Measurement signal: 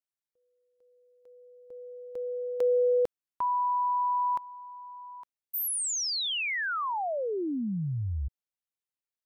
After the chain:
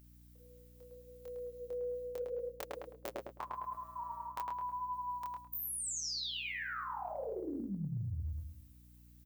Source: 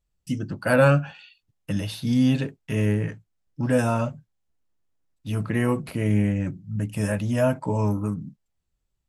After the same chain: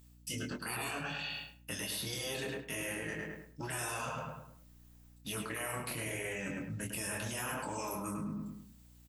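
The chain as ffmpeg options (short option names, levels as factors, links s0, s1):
-filter_complex "[0:a]aemphasis=mode=production:type=riaa,flanger=delay=3.8:depth=5.2:regen=-38:speed=0.78:shape=sinusoidal,highshelf=f=5800:g=-8,afftfilt=real='re*lt(hypot(re,im),0.1)':imag='im*lt(hypot(re,im),0.1)':win_size=1024:overlap=0.75,acrossover=split=1400|7600[s0][s1][s2];[s0]acompressor=threshold=0.00794:ratio=6[s3];[s1]acompressor=threshold=0.00708:ratio=5[s4];[s2]acompressor=threshold=0.00708:ratio=4[s5];[s3][s4][s5]amix=inputs=3:normalize=0,asplit=2[s6][s7];[s7]adelay=25,volume=0.562[s8];[s6][s8]amix=inputs=2:normalize=0,asplit=2[s9][s10];[s10]adelay=106,lowpass=f=2100:p=1,volume=0.668,asplit=2[s11][s12];[s12]adelay=106,lowpass=f=2100:p=1,volume=0.38,asplit=2[s13][s14];[s14]adelay=106,lowpass=f=2100:p=1,volume=0.38,asplit=2[s15][s16];[s16]adelay=106,lowpass=f=2100:p=1,volume=0.38,asplit=2[s17][s18];[s18]adelay=106,lowpass=f=2100:p=1,volume=0.38[s19];[s9][s11][s13][s15][s17][s19]amix=inputs=6:normalize=0,areverse,acompressor=threshold=0.00251:ratio=4:attack=2.1:release=169:knee=6:detection=rms,areverse,aeval=exprs='val(0)+0.0002*(sin(2*PI*60*n/s)+sin(2*PI*2*60*n/s)/2+sin(2*PI*3*60*n/s)/3+sin(2*PI*4*60*n/s)/4+sin(2*PI*5*60*n/s)/5)':c=same,volume=5.96"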